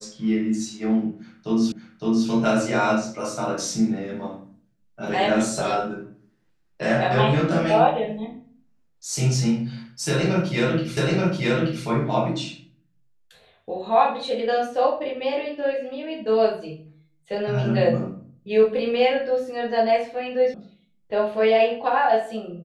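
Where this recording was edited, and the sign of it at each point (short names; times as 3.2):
1.72 repeat of the last 0.56 s
10.97 repeat of the last 0.88 s
20.54 sound cut off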